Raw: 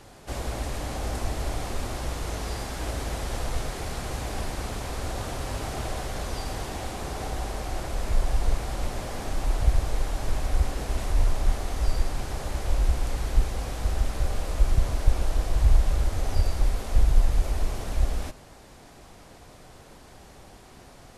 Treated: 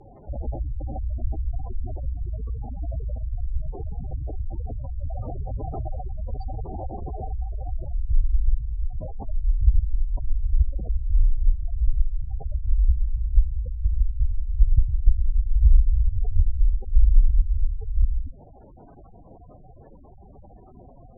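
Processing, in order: spectral gate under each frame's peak -10 dB strong; LPF 11000 Hz; gain +4 dB

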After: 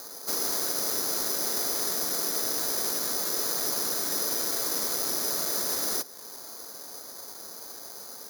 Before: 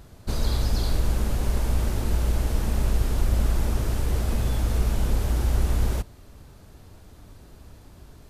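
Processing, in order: mistuned SSB -180 Hz 550–2200 Hz; dynamic EQ 820 Hz, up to -4 dB, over -53 dBFS, Q 1.4; in parallel at -2.5 dB: compressor, threshold -54 dBFS, peak gain reduction 14.5 dB; on the sum: careless resampling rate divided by 8×, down none, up zero stuff; soft clip -17.5 dBFS, distortion -18 dB; gain +5 dB

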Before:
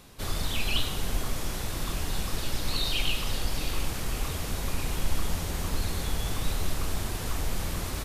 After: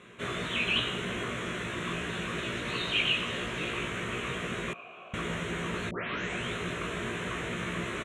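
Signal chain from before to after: 5.89 tape start 0.67 s; bell 520 Hz +5.5 dB 1.6 oct; fixed phaser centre 2000 Hz, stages 4; doubler 17 ms -2.5 dB; 4.73–5.14 vowel filter a; speaker cabinet 200–6300 Hz, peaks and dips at 280 Hz -9 dB, 520 Hz -6 dB, 860 Hz +9 dB, 5400 Hz -10 dB; gain +4.5 dB

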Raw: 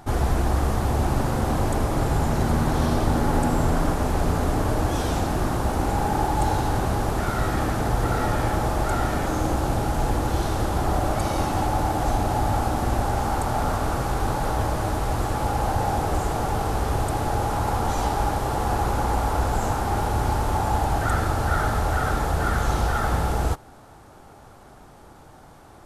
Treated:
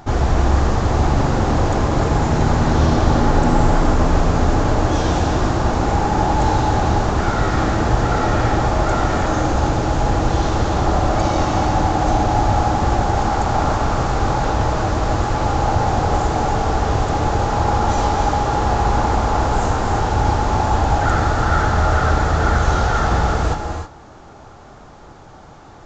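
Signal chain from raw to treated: downsampling 16000 Hz; non-linear reverb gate 0.34 s rising, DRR 4.5 dB; gain +5 dB

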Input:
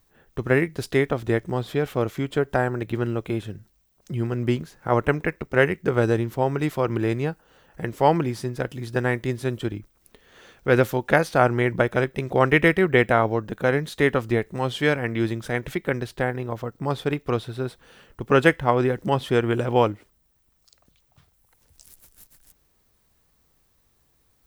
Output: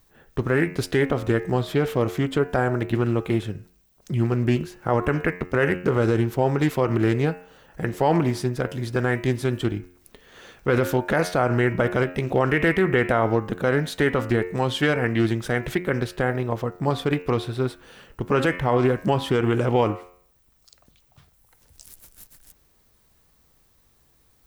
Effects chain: de-hum 89.68 Hz, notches 33; limiter -13.5 dBFS, peak gain reduction 11 dB; Doppler distortion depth 0.16 ms; gain +4 dB

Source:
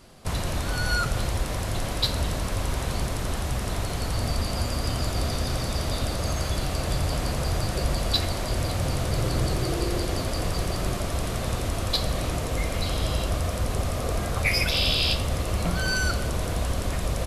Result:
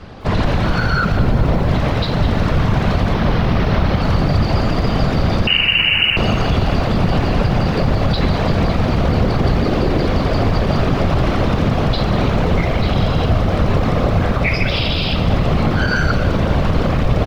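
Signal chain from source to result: 3.13–4.02 CVSD 32 kbps; whisperiser; in parallel at 0 dB: vocal rider; 1.17–1.69 on the sum: tilt shelf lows +4 dB; limiter -13 dBFS, peak gain reduction 9.5 dB; air absorption 250 m; 5.47–6.17 inverted band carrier 2900 Hz; outdoor echo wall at 270 m, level -14 dB; lo-fi delay 0.201 s, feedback 55%, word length 8-bit, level -14 dB; gain +7.5 dB

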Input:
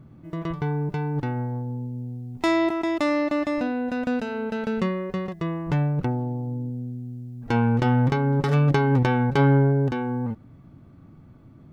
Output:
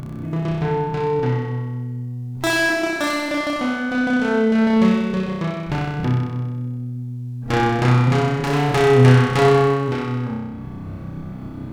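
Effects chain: self-modulated delay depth 0.62 ms; upward compressor, threshold -26 dBFS; flutter echo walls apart 5.4 m, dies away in 1.3 s; gain +2 dB

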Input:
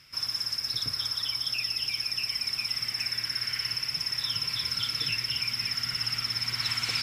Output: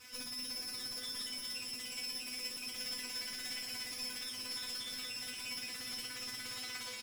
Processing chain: minimum comb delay 9.9 ms; HPF 62 Hz 12 dB/oct; negative-ratio compressor -37 dBFS, ratio -0.5; soft clip -38.5 dBFS, distortion -7 dB; resonator 250 Hz, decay 0.22 s, harmonics all, mix 100%; frequency-shifting echo 0.385 s, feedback 64%, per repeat +100 Hz, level -13 dB; gain +12 dB

